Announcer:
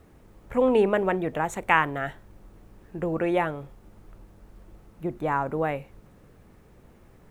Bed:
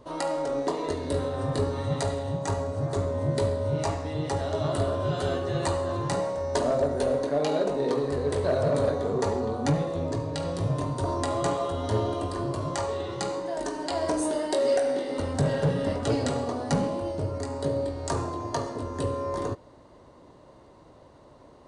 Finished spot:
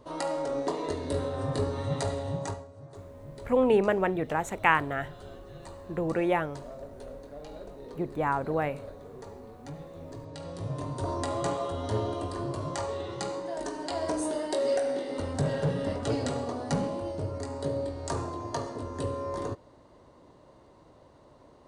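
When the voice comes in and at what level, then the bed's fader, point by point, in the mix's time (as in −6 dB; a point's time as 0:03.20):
2.95 s, −2.0 dB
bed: 0:02.44 −2.5 dB
0:02.68 −18.5 dB
0:09.61 −18.5 dB
0:11.07 −3.5 dB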